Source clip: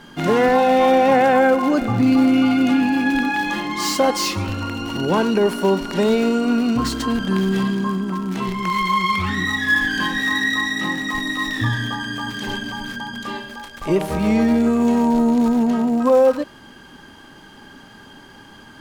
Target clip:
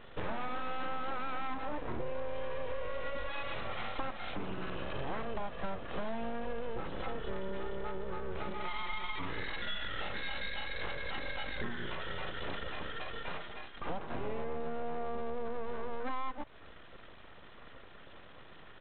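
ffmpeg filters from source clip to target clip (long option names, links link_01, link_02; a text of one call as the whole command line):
ffmpeg -i in.wav -af "highshelf=frequency=2200:gain=-9.5,acompressor=threshold=-26dB:ratio=6,aresample=8000,aeval=exprs='abs(val(0))':channel_layout=same,aresample=44100,volume=-6dB" out.wav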